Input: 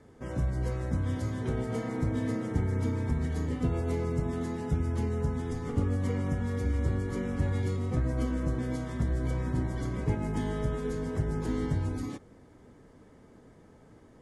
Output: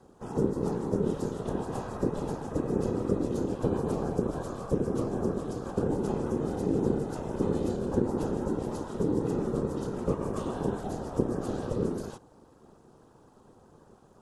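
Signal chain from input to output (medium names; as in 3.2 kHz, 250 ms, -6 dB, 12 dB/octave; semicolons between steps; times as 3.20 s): static phaser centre 760 Hz, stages 4; whisper effect; ring modulator 300 Hz; trim +5.5 dB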